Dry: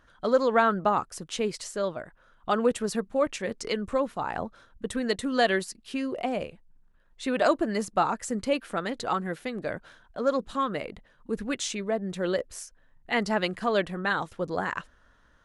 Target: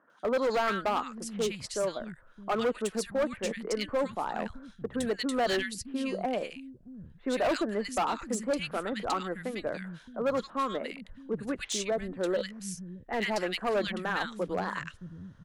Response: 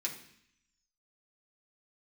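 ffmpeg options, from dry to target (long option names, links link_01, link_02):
-filter_complex "[0:a]acrossover=split=190|1700[link_01][link_02][link_03];[link_03]adelay=100[link_04];[link_01]adelay=620[link_05];[link_05][link_02][link_04]amix=inputs=3:normalize=0,aeval=exprs='0.316*(cos(1*acos(clip(val(0)/0.316,-1,1)))-cos(1*PI/2))+0.02*(cos(3*acos(clip(val(0)/0.316,-1,1)))-cos(3*PI/2))+0.00891*(cos(5*acos(clip(val(0)/0.316,-1,1)))-cos(5*PI/2))+0.002*(cos(6*acos(clip(val(0)/0.316,-1,1)))-cos(6*PI/2))':channel_layout=same,asoftclip=type=hard:threshold=-23.5dB"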